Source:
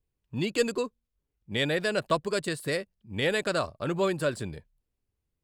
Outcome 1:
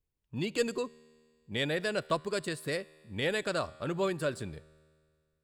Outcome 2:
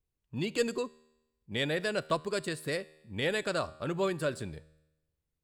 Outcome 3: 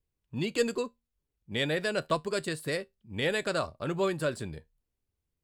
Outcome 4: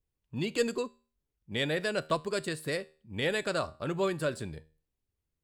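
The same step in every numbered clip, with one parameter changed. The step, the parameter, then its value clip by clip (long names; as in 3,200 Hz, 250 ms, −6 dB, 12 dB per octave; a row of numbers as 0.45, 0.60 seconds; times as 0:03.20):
tuned comb filter, decay: 2, 0.97, 0.17, 0.4 seconds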